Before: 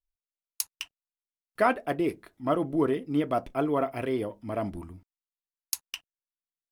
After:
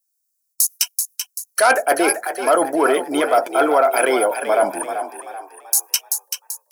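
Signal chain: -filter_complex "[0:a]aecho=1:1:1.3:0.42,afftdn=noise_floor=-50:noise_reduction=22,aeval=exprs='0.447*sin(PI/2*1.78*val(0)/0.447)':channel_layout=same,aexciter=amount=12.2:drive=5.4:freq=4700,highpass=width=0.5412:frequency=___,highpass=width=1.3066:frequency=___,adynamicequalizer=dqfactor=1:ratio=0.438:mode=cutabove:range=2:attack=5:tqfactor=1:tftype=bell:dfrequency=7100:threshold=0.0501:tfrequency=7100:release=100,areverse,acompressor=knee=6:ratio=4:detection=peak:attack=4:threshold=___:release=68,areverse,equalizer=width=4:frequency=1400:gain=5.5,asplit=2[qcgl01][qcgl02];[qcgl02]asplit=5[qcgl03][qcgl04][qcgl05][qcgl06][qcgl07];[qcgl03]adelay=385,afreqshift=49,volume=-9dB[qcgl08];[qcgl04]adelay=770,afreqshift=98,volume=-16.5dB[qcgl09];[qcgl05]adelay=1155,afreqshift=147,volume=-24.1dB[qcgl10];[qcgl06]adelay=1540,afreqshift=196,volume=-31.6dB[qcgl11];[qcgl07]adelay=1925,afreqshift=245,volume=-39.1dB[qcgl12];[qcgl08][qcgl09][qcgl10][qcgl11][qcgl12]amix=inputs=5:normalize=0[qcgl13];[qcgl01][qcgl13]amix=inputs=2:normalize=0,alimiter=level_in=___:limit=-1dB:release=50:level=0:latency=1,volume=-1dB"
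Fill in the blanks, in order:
400, 400, -26dB, 13dB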